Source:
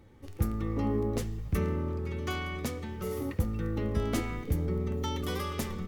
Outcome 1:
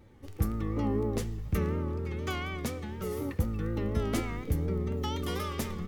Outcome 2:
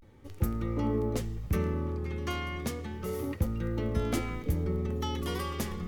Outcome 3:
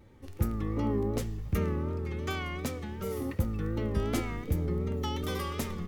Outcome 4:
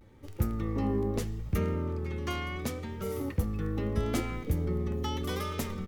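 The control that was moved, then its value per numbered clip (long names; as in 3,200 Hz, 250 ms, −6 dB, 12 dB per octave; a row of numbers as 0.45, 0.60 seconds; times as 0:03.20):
pitch vibrato, speed: 4.1, 0.32, 2.7, 0.76 Hertz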